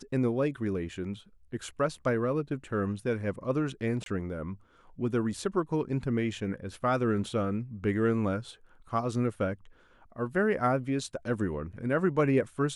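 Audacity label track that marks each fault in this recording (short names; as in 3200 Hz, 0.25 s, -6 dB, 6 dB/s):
4.040000	4.060000	gap 22 ms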